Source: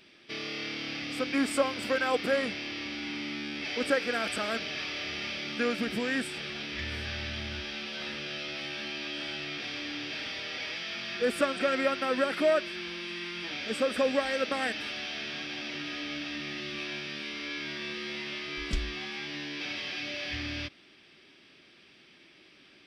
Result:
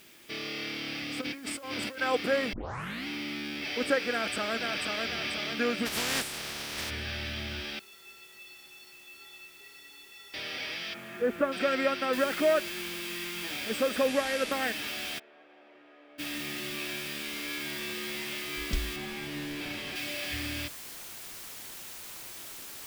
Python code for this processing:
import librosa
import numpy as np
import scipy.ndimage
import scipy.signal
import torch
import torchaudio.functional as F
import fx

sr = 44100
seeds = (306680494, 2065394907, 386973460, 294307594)

y = fx.over_compress(x, sr, threshold_db=-36.0, ratio=-1.0, at=(1.2, 2.0), fade=0.02)
y = fx.echo_throw(y, sr, start_s=4.11, length_s=0.93, ms=490, feedback_pct=50, wet_db=-3.5)
y = fx.spec_flatten(y, sr, power=0.33, at=(5.85, 6.89), fade=0.02)
y = fx.stiff_resonator(y, sr, f0_hz=400.0, decay_s=0.29, stiffness=0.03, at=(7.79, 10.34))
y = fx.lowpass(y, sr, hz=1500.0, slope=12, at=(10.93, 11.51), fade=0.02)
y = fx.noise_floor_step(y, sr, seeds[0], at_s=12.13, before_db=-58, after_db=-44, tilt_db=0.0)
y = fx.cvsd(y, sr, bps=64000, at=(14.08, 14.52))
y = fx.ladder_bandpass(y, sr, hz=660.0, resonance_pct=30, at=(15.18, 16.18), fade=0.02)
y = fx.tilt_eq(y, sr, slope=-2.0, at=(18.96, 19.96))
y = fx.edit(y, sr, fx.tape_start(start_s=2.53, length_s=0.54), tone=tone)